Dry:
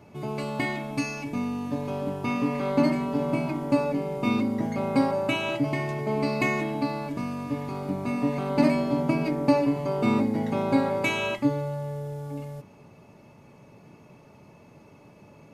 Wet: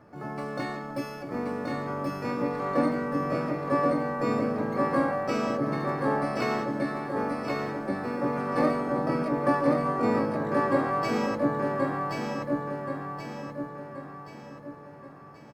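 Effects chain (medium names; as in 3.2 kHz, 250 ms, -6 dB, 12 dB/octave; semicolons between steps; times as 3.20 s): harmony voices +4 st -11 dB, +12 st -2 dB; resonant high shelf 2.1 kHz -8 dB, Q 1.5; feedback delay 1078 ms, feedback 45%, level -3 dB; trim -6 dB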